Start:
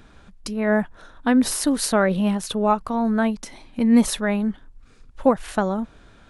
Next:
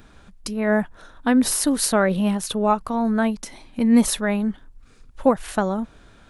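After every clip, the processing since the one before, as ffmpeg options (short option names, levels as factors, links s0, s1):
-af "highshelf=f=9800:g=7.5"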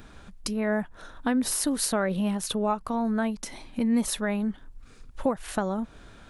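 -af "acompressor=threshold=0.0316:ratio=2,volume=1.12"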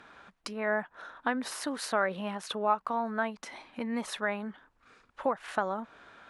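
-af "bandpass=f=1300:t=q:w=0.8:csg=0,volume=1.33"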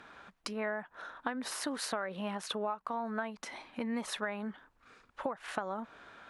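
-af "acompressor=threshold=0.0282:ratio=12"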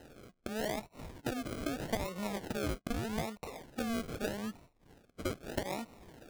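-af "acrusher=samples=38:mix=1:aa=0.000001:lfo=1:lforange=22.8:lforate=0.81"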